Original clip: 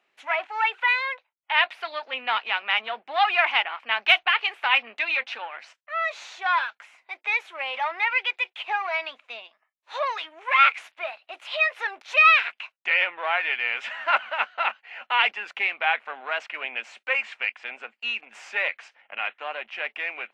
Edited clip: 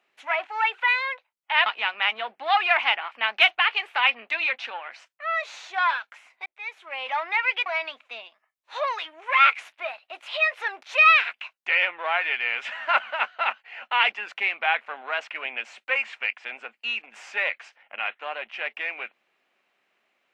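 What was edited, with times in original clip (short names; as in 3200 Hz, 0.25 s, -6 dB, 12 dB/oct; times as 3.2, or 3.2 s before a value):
1.66–2.34 cut
7.14–7.82 fade in linear
8.34–8.85 cut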